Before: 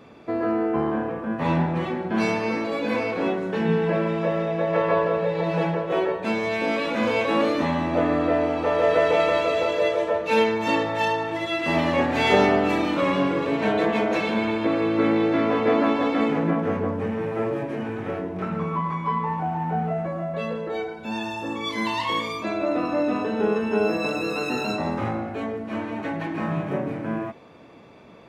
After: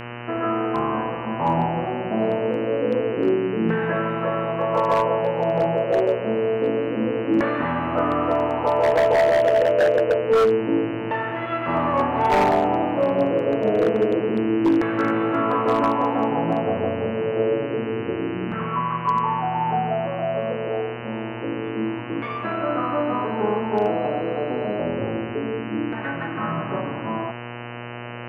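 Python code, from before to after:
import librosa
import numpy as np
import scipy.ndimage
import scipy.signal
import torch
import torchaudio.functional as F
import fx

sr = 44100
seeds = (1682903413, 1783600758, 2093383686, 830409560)

y = fx.filter_lfo_lowpass(x, sr, shape='saw_down', hz=0.27, low_hz=320.0, high_hz=1700.0, q=3.5)
y = fx.dmg_buzz(y, sr, base_hz=120.0, harmonics=25, level_db=-32.0, tilt_db=-3, odd_only=False)
y = 10.0 ** (-9.0 / 20.0) * (np.abs((y / 10.0 ** (-9.0 / 20.0) + 3.0) % 4.0 - 2.0) - 1.0)
y = y * 10.0 ** (-2.5 / 20.0)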